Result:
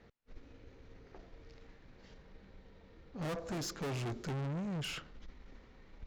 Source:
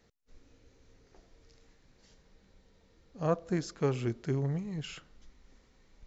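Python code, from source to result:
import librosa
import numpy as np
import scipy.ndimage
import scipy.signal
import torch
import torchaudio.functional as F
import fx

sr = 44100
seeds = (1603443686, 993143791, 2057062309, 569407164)

y = fx.env_lowpass(x, sr, base_hz=2800.0, full_db=-30.5)
y = fx.tube_stage(y, sr, drive_db=44.0, bias=0.45)
y = y * librosa.db_to_amplitude(8.0)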